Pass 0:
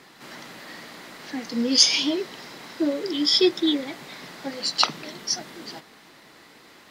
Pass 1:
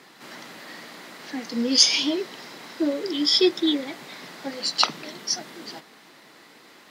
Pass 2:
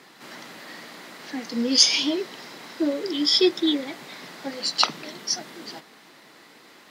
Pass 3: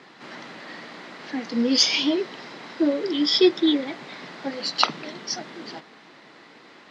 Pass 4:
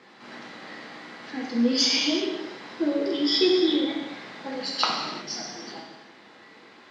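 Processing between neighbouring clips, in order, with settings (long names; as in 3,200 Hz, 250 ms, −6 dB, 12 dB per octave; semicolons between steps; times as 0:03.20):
high-pass filter 150 Hz 12 dB per octave
no processing that can be heard
high-frequency loss of the air 130 metres; level +3 dB
reverb whose tail is shaped and stops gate 400 ms falling, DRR −2.5 dB; level −6 dB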